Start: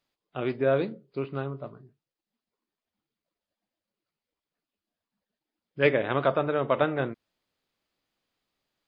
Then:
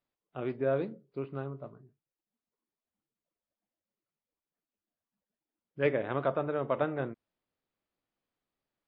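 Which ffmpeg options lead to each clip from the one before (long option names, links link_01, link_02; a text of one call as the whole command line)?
ffmpeg -i in.wav -af "lowpass=frequency=1600:poles=1,volume=-5dB" out.wav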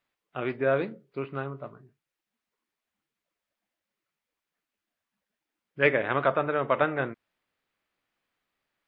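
ffmpeg -i in.wav -af "equalizer=frequency=2000:width_type=o:width=2.2:gain=10.5,volume=2dB" out.wav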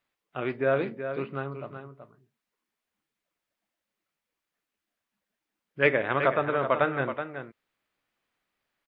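ffmpeg -i in.wav -af "aecho=1:1:376:0.355" out.wav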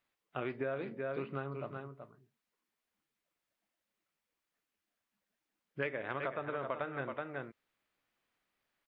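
ffmpeg -i in.wav -af "acompressor=threshold=-31dB:ratio=8,volume=-2.5dB" out.wav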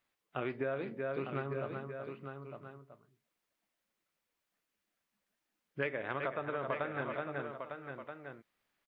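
ffmpeg -i in.wav -af "aecho=1:1:903:0.447,volume=1dB" out.wav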